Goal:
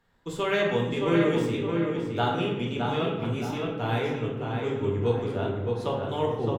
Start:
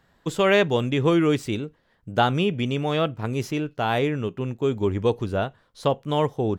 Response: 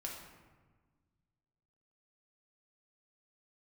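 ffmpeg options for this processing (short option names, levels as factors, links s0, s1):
-filter_complex "[0:a]asplit=2[s0][s1];[s1]adelay=616,lowpass=f=3300:p=1,volume=0.631,asplit=2[s2][s3];[s3]adelay=616,lowpass=f=3300:p=1,volume=0.41,asplit=2[s4][s5];[s5]adelay=616,lowpass=f=3300:p=1,volume=0.41,asplit=2[s6][s7];[s7]adelay=616,lowpass=f=3300:p=1,volume=0.41,asplit=2[s8][s9];[s9]adelay=616,lowpass=f=3300:p=1,volume=0.41[s10];[s0][s2][s4][s6][s8][s10]amix=inputs=6:normalize=0[s11];[1:a]atrim=start_sample=2205,asetrate=66150,aresample=44100[s12];[s11][s12]afir=irnorm=-1:irlink=0,volume=0.891"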